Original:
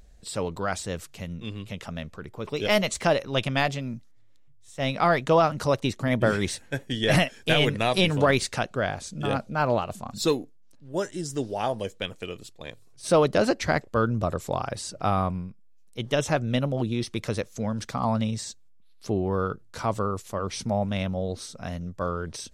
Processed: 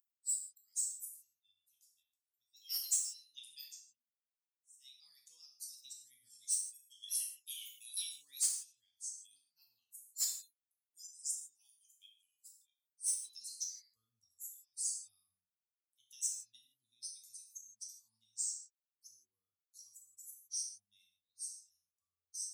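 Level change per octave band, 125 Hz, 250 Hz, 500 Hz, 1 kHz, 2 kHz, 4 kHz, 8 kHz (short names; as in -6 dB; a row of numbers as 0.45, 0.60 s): under -40 dB, under -40 dB, under -40 dB, under -40 dB, -38.5 dB, -16.0 dB, +1.5 dB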